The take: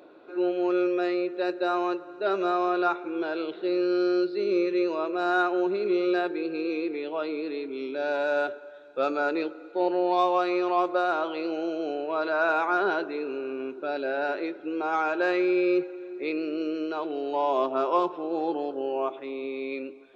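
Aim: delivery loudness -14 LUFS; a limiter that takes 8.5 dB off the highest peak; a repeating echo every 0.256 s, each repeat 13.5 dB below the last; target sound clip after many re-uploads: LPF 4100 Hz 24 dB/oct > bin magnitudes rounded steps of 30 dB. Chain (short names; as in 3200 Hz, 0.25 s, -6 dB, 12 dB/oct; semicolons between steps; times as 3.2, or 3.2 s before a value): limiter -20.5 dBFS; LPF 4100 Hz 24 dB/oct; feedback echo 0.256 s, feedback 21%, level -13.5 dB; bin magnitudes rounded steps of 30 dB; gain +16.5 dB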